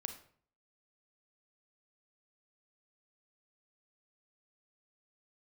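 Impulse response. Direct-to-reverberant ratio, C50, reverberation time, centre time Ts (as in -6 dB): 7.0 dB, 9.5 dB, 0.55 s, 13 ms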